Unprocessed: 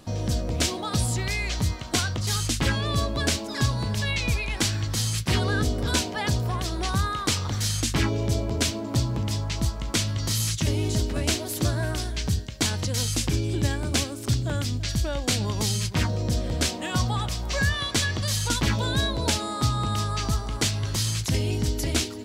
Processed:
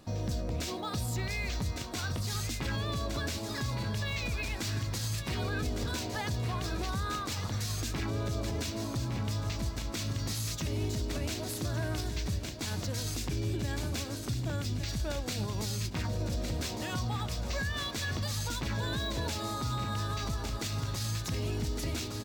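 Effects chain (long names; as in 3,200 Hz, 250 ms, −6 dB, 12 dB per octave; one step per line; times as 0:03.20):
notch filter 3,100 Hz, Q 16
on a send: repeating echo 1,159 ms, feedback 56%, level −11 dB
on the sum: brickwall limiter −19 dBFS, peak gain reduction 9.5 dB
linearly interpolated sample-rate reduction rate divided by 2×
level −5.5 dB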